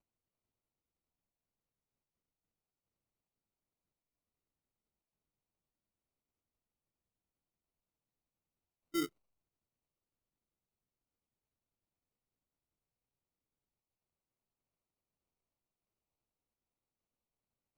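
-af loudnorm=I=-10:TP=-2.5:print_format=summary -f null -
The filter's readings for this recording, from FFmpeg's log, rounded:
Input Integrated:    -39.4 LUFS
Input True Peak:     -23.9 dBTP
Input LRA:             4.6 LU
Input Threshold:     -49.4 LUFS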